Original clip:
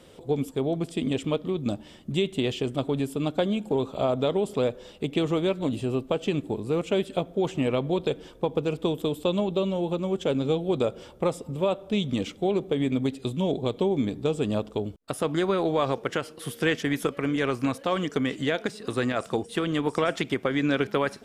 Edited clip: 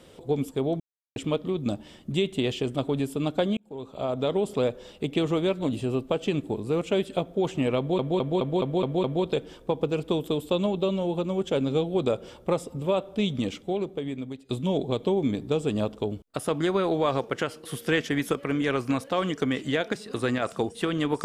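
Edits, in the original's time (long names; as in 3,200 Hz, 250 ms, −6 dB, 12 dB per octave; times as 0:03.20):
0:00.80–0:01.16: silence
0:03.57–0:04.38: fade in
0:07.78: stutter 0.21 s, 7 plays
0:12.03–0:13.23: fade out, to −15.5 dB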